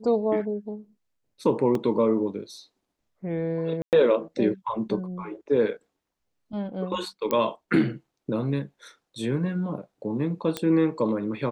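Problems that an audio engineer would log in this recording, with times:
1.75 s: dropout 2.2 ms
3.82–3.93 s: dropout 108 ms
7.31 s: pop -12 dBFS
10.57 s: pop -13 dBFS

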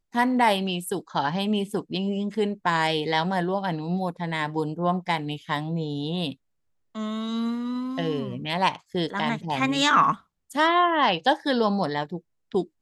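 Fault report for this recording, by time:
no faults

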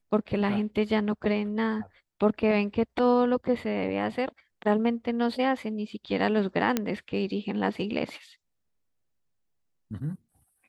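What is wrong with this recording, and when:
6.77 s: pop -10 dBFS

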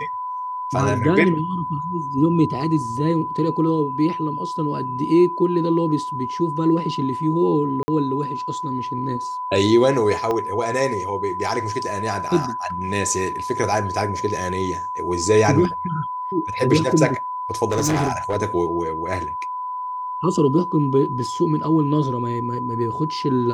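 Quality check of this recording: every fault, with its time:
whine 1 kHz -25 dBFS
7.83–7.88 s: dropout 50 ms
10.31 s: pop -12 dBFS
17.71–18.37 s: clipped -16 dBFS

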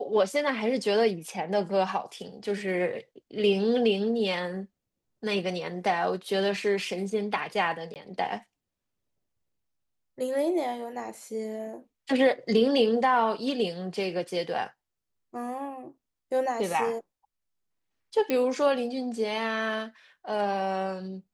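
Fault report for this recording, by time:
7.94–7.96 s: dropout 18 ms
18.30 s: pop -14 dBFS

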